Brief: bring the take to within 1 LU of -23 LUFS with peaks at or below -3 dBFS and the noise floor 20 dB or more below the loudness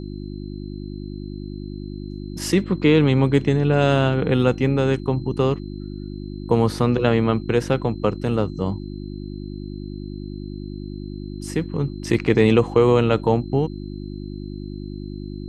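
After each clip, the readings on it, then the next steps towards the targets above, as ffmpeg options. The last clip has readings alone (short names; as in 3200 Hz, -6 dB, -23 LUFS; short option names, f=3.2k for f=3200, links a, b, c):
hum 50 Hz; harmonics up to 350 Hz; hum level -29 dBFS; steady tone 4100 Hz; tone level -52 dBFS; loudness -20.0 LUFS; peak -3.5 dBFS; loudness target -23.0 LUFS
-> -af "bandreject=f=50:t=h:w=4,bandreject=f=100:t=h:w=4,bandreject=f=150:t=h:w=4,bandreject=f=200:t=h:w=4,bandreject=f=250:t=h:w=4,bandreject=f=300:t=h:w=4,bandreject=f=350:t=h:w=4"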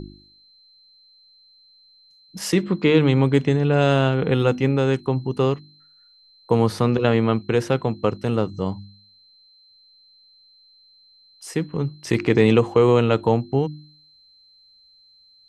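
hum none; steady tone 4100 Hz; tone level -52 dBFS
-> -af "bandreject=f=4.1k:w=30"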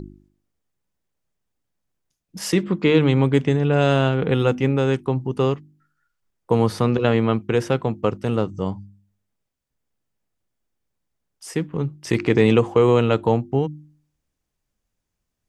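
steady tone none; loudness -20.5 LUFS; peak -4.0 dBFS; loudness target -23.0 LUFS
-> -af "volume=-2.5dB"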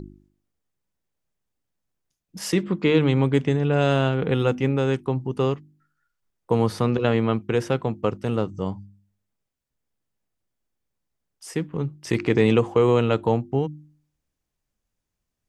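loudness -23.0 LUFS; peak -6.5 dBFS; noise floor -82 dBFS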